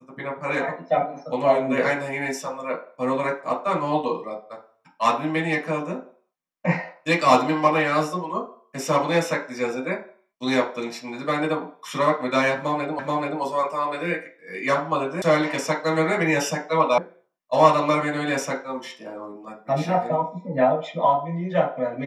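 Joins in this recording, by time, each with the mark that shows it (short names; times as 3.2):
12.99 repeat of the last 0.43 s
15.22 sound cut off
16.98 sound cut off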